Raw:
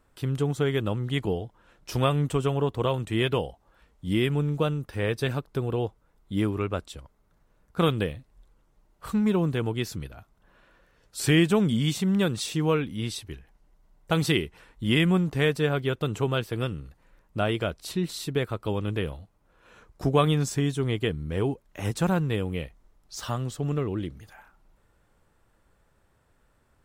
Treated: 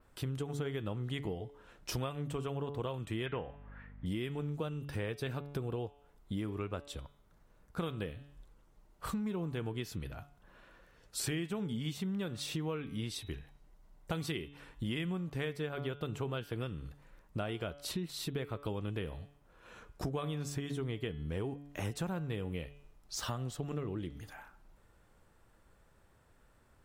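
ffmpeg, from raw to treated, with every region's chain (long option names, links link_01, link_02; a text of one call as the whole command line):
ffmpeg -i in.wav -filter_complex "[0:a]asettb=1/sr,asplit=3[link_01][link_02][link_03];[link_01]atrim=end=3.264[link_04];[link_02]atrim=start=3.26:end=4.06,asetpts=PTS-STARTPTS,afade=type=in:duration=0.004:curve=qsin,afade=type=out:start_time=0.796:duration=0.004:curve=qsin,aeval=exprs='val(0)+0.00316*(sin(2*PI*50*n/s)+sin(2*PI*2*50*n/s)/2+sin(2*PI*3*50*n/s)/3+sin(2*PI*4*50*n/s)/4+sin(2*PI*5*50*n/s)/5)':channel_layout=same,lowpass=frequency=1900:width_type=q:width=4.1[link_05];[link_03]atrim=start=4.056[link_06];[link_04][link_05]acrossfade=duration=0.004:curve1=hsin:curve2=qsin[link_07];[link_07][link_06]acrossfade=duration=0.004:curve1=qsin:curve2=hsin,bandreject=frequency=143.1:width_type=h:width=4,bandreject=frequency=286.2:width_type=h:width=4,bandreject=frequency=429.3:width_type=h:width=4,bandreject=frequency=572.4:width_type=h:width=4,bandreject=frequency=715.5:width_type=h:width=4,bandreject=frequency=858.6:width_type=h:width=4,bandreject=frequency=1001.7:width_type=h:width=4,bandreject=frequency=1144.8:width_type=h:width=4,bandreject=frequency=1287.9:width_type=h:width=4,bandreject=frequency=1431:width_type=h:width=4,bandreject=frequency=1574.1:width_type=h:width=4,bandreject=frequency=1717.2:width_type=h:width=4,bandreject=frequency=1860.3:width_type=h:width=4,bandreject=frequency=2003.4:width_type=h:width=4,bandreject=frequency=2146.5:width_type=h:width=4,bandreject=frequency=2289.6:width_type=h:width=4,bandreject=frequency=2432.7:width_type=h:width=4,bandreject=frequency=2575.8:width_type=h:width=4,bandreject=frequency=2718.9:width_type=h:width=4,bandreject=frequency=2862:width_type=h:width=4,bandreject=frequency=3005.1:width_type=h:width=4,bandreject=frequency=3148.2:width_type=h:width=4,bandreject=frequency=3291.3:width_type=h:width=4,bandreject=frequency=3434.4:width_type=h:width=4,bandreject=frequency=3577.5:width_type=h:width=4,bandreject=frequency=3720.6:width_type=h:width=4,bandreject=frequency=3863.7:width_type=h:width=4,adynamicequalizer=threshold=0.00224:dfrequency=7700:dqfactor=1.1:tfrequency=7700:tqfactor=1.1:attack=5:release=100:ratio=0.375:range=3:mode=cutabove:tftype=bell,acompressor=threshold=-35dB:ratio=6" out.wav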